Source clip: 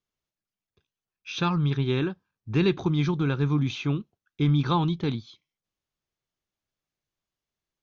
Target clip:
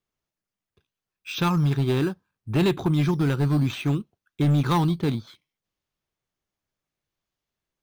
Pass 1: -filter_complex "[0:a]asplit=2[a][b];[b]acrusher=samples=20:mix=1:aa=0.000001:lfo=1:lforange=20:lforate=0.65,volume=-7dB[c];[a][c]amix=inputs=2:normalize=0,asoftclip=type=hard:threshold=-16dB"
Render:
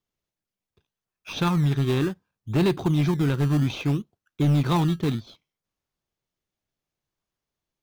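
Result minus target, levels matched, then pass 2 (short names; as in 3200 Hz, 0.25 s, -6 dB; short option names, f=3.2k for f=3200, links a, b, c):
decimation with a swept rate: distortion +7 dB
-filter_complex "[0:a]asplit=2[a][b];[b]acrusher=samples=7:mix=1:aa=0.000001:lfo=1:lforange=7:lforate=0.65,volume=-7dB[c];[a][c]amix=inputs=2:normalize=0,asoftclip=type=hard:threshold=-16dB"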